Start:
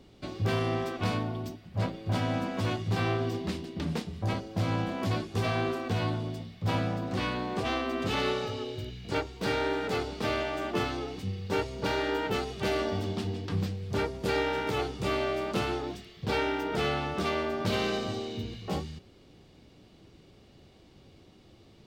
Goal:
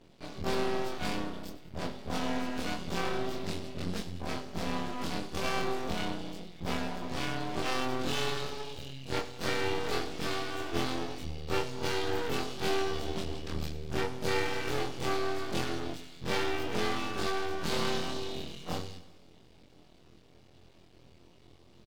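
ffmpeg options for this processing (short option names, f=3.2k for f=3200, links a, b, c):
-filter_complex "[0:a]afftfilt=real='re':imag='-im':win_size=2048:overlap=0.75,aeval=exprs='max(val(0),0)':c=same,acontrast=33,asplit=2[a][b];[b]aecho=0:1:98|196|294|392|490:0.168|0.094|0.0526|0.0295|0.0165[c];[a][c]amix=inputs=2:normalize=0,adynamicequalizer=threshold=0.00355:dfrequency=2800:dqfactor=0.7:tfrequency=2800:tqfactor=0.7:attack=5:release=100:ratio=0.375:range=2:mode=boostabove:tftype=highshelf"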